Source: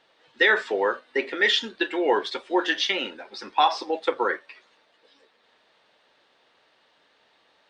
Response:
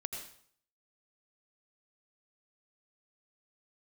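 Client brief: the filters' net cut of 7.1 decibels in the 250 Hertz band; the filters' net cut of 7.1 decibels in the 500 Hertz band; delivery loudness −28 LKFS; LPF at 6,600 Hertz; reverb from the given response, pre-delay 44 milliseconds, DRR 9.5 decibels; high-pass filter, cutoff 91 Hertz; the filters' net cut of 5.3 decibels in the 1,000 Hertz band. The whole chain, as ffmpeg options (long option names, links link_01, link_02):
-filter_complex "[0:a]highpass=91,lowpass=6600,equalizer=frequency=250:width_type=o:gain=-8,equalizer=frequency=500:width_type=o:gain=-5,equalizer=frequency=1000:width_type=o:gain=-4.5,asplit=2[link_01][link_02];[1:a]atrim=start_sample=2205,adelay=44[link_03];[link_02][link_03]afir=irnorm=-1:irlink=0,volume=-9.5dB[link_04];[link_01][link_04]amix=inputs=2:normalize=0,volume=-1.5dB"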